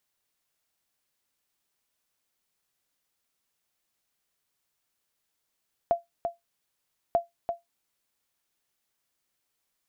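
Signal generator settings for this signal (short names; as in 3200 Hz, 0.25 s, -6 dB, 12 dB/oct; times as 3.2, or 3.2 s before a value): sonar ping 685 Hz, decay 0.16 s, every 1.24 s, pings 2, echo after 0.34 s, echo -6.5 dB -14.5 dBFS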